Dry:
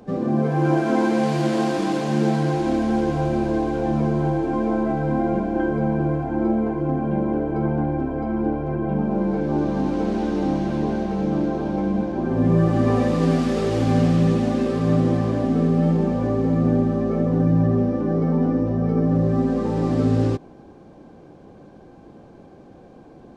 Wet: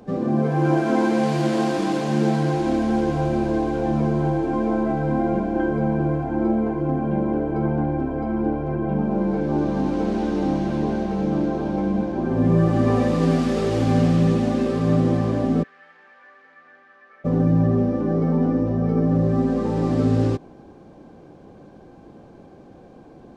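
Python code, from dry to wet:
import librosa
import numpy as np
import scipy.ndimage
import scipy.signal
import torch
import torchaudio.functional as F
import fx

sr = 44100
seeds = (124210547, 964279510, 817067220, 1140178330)

y = fx.ladder_bandpass(x, sr, hz=1900.0, resonance_pct=60, at=(15.62, 17.24), fade=0.02)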